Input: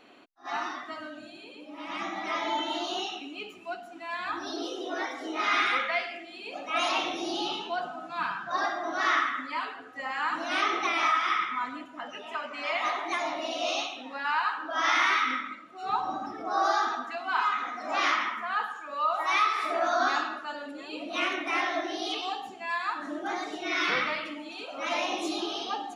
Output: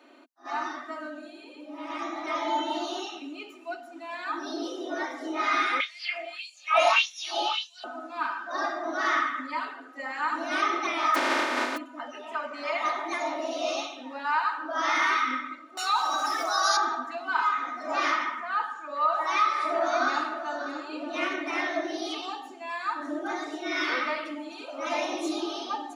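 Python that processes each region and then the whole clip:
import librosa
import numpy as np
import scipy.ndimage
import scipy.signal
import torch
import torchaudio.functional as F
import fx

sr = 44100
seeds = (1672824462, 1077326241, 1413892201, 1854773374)

y = fx.chain(x, sr, fx.peak_eq(hz=2700.0, db=6.0, octaves=0.96),
    fx.filter_lfo_highpass(shape='sine', hz=1.7, low_hz=600.0, high_hz=7700.0, q=3.4),
    fx.doubler(ms=28.0, db=-9.0), at=(5.8, 7.84))
y = fx.spec_flatten(y, sr, power=0.1, at=(11.14, 11.76), fade=0.02)
y = fx.lowpass(y, sr, hz=2300.0, slope=12, at=(11.14, 11.76), fade=0.02)
y = fx.env_flatten(y, sr, amount_pct=50, at=(11.14, 11.76), fade=0.02)
y = fx.chain(y, sr, fx.highpass(hz=610.0, slope=6),
    fx.tilt_eq(slope=5.5),
    fx.env_flatten(amount_pct=70), at=(15.77, 16.77))
y = fx.chain(y, sr, fx.lowpass(hz=8400.0, slope=12),
    fx.echo_single(ms=590, db=-11.0), at=(18.36, 21.7))
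y = scipy.signal.sosfilt(scipy.signal.ellip(4, 1.0, 40, 250.0, 'highpass', fs=sr, output='sos'), y)
y = fx.peak_eq(y, sr, hz=2900.0, db=-5.0, octaves=0.74)
y = y + 0.58 * np.pad(y, (int(3.3 * sr / 1000.0), 0))[:len(y)]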